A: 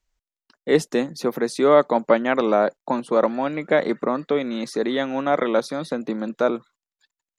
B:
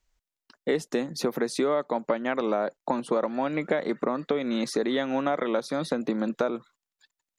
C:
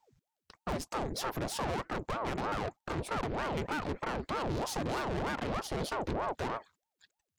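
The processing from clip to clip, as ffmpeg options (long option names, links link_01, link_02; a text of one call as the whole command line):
ffmpeg -i in.wav -af "acompressor=threshold=-24dB:ratio=10,volume=2dB" out.wav
ffmpeg -i in.wav -af "lowshelf=frequency=140:gain=6,aeval=exprs='(tanh(56.2*val(0)+0.7)-tanh(0.7))/56.2':channel_layout=same,aeval=exprs='val(0)*sin(2*PI*500*n/s+500*0.85/3.2*sin(2*PI*3.2*n/s))':channel_layout=same,volume=5dB" out.wav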